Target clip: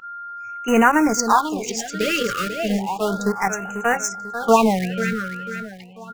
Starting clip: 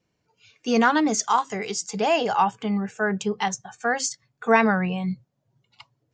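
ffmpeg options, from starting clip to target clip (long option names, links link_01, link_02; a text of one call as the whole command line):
ffmpeg -i in.wav -filter_complex "[0:a]asplit=2[link_01][link_02];[link_02]aeval=exprs='val(0)*gte(abs(val(0)),0.1)':channel_layout=same,volume=-3dB[link_03];[link_01][link_03]amix=inputs=2:normalize=0,aeval=exprs='val(0)+0.0282*sin(2*PI*1400*n/s)':channel_layout=same,aecho=1:1:493|986|1479|1972:0.335|0.127|0.0484|0.0184,afftfilt=real='re*(1-between(b*sr/1024,810*pow(4300/810,0.5+0.5*sin(2*PI*0.33*pts/sr))/1.41,810*pow(4300/810,0.5+0.5*sin(2*PI*0.33*pts/sr))*1.41))':imag='im*(1-between(b*sr/1024,810*pow(4300/810,0.5+0.5*sin(2*PI*0.33*pts/sr))/1.41,810*pow(4300/810,0.5+0.5*sin(2*PI*0.33*pts/sr))*1.41))':win_size=1024:overlap=0.75" out.wav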